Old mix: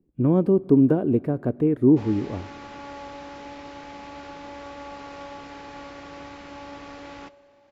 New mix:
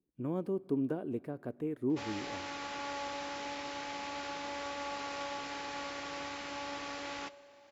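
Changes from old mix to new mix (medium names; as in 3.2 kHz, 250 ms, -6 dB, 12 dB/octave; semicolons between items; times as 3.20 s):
speech -11.5 dB; master: add tilt EQ +2.5 dB/octave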